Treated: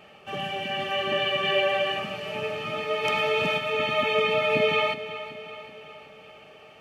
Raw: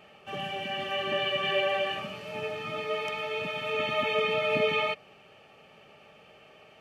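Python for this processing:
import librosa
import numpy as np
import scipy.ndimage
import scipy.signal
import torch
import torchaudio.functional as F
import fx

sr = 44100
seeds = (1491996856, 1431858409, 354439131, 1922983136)

y = fx.echo_feedback(x, sr, ms=375, feedback_pct=55, wet_db=-13.5)
y = fx.env_flatten(y, sr, amount_pct=50, at=(3.03, 3.57), fade=0.02)
y = F.gain(torch.from_numpy(y), 3.5).numpy()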